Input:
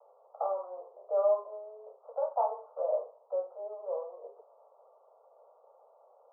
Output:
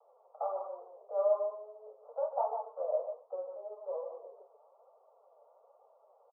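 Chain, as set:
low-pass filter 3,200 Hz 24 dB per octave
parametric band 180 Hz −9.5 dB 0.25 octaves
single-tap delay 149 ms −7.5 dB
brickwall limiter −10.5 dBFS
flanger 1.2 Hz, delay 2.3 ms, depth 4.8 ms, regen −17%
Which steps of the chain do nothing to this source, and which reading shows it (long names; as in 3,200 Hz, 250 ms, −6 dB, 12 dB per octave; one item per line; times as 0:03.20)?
low-pass filter 3,200 Hz: nothing at its input above 1,200 Hz
parametric band 180 Hz: nothing at its input below 380 Hz
brickwall limiter −10.5 dBFS: peak of its input −16.5 dBFS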